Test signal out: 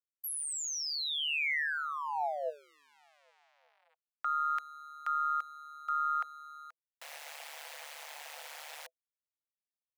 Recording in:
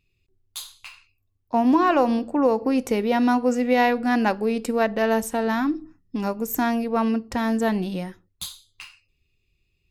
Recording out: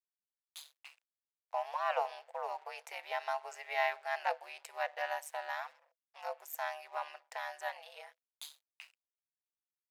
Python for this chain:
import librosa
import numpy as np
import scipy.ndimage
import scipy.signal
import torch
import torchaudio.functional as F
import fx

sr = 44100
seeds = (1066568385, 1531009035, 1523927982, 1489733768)

y = np.sign(x) * np.maximum(np.abs(x) - 10.0 ** (-47.0 / 20.0), 0.0)
y = scipy.signal.sosfilt(scipy.signal.cheby1(6, 6, 560.0, 'highpass', fs=sr, output='sos'), y)
y = y * np.sin(2.0 * np.pi * 74.0 * np.arange(len(y)) / sr)
y = F.gain(torch.from_numpy(y), -5.5).numpy()